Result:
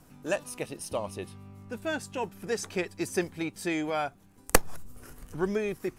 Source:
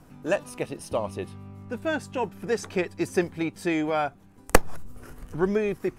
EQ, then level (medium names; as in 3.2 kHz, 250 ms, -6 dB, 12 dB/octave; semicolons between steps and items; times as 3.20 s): treble shelf 3.6 kHz +9 dB; -5.0 dB